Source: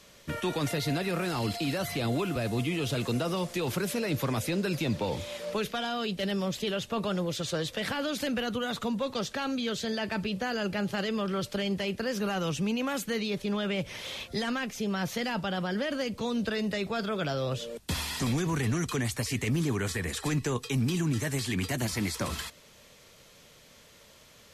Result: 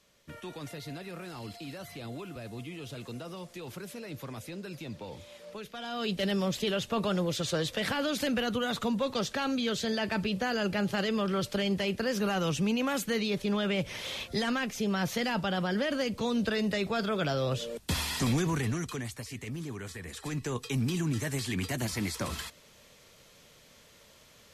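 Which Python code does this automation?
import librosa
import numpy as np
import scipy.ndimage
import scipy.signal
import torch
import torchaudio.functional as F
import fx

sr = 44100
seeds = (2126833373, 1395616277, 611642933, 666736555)

y = fx.gain(x, sr, db=fx.line((5.69, -11.5), (6.09, 1.0), (18.41, 1.0), (19.25, -10.0), (20.02, -10.0), (20.65, -2.0)))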